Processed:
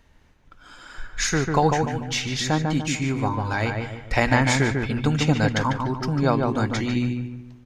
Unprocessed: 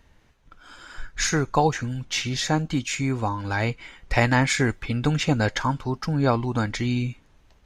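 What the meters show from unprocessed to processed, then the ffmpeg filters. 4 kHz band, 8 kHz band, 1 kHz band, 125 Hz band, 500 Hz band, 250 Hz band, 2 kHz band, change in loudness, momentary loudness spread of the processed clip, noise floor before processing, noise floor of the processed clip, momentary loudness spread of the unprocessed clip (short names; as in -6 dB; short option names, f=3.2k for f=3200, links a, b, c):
+0.5 dB, 0.0 dB, +1.5 dB, +1.0 dB, +2.0 dB, +2.0 dB, +1.0 dB, +1.0 dB, 7 LU, -58 dBFS, -56 dBFS, 8 LU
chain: -filter_complex "[0:a]bandreject=f=60:t=h:w=6,bandreject=f=120:t=h:w=6,asplit=2[a][b];[b]adelay=147,lowpass=f=1.9k:p=1,volume=-3.5dB,asplit=2[c][d];[d]adelay=147,lowpass=f=1.9k:p=1,volume=0.43,asplit=2[e][f];[f]adelay=147,lowpass=f=1.9k:p=1,volume=0.43,asplit=2[g][h];[h]adelay=147,lowpass=f=1.9k:p=1,volume=0.43,asplit=2[i][j];[j]adelay=147,lowpass=f=1.9k:p=1,volume=0.43[k];[a][c][e][g][i][k]amix=inputs=6:normalize=0"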